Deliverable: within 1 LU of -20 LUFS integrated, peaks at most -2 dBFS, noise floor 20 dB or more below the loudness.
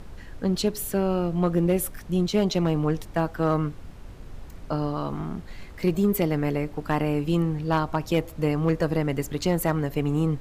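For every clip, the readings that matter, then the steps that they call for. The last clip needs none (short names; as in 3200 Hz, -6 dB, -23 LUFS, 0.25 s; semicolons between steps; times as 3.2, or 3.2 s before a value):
clipped 0.3%; flat tops at -14.0 dBFS; noise floor -42 dBFS; noise floor target -46 dBFS; loudness -25.5 LUFS; peak -14.0 dBFS; loudness target -20.0 LUFS
-> clip repair -14 dBFS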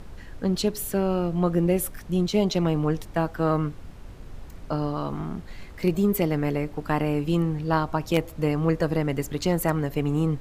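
clipped 0.0%; noise floor -42 dBFS; noise floor target -46 dBFS
-> noise print and reduce 6 dB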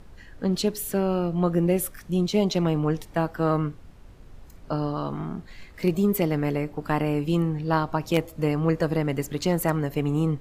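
noise floor -47 dBFS; loudness -25.5 LUFS; peak -5.0 dBFS; loudness target -20.0 LUFS
-> gain +5.5 dB; limiter -2 dBFS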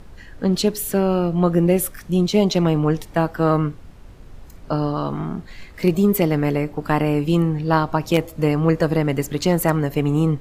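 loudness -20.0 LUFS; peak -2.0 dBFS; noise floor -42 dBFS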